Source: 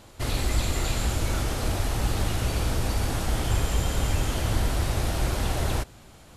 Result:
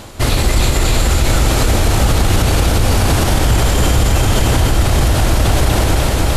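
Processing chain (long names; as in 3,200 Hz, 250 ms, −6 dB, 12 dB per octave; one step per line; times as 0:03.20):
reversed playback
upward compression, threshold −31 dBFS
reversed playback
delay that swaps between a low-pass and a high-pass 151 ms, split 1,000 Hz, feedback 89%, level −4.5 dB
boost into a limiter +17.5 dB
level −3 dB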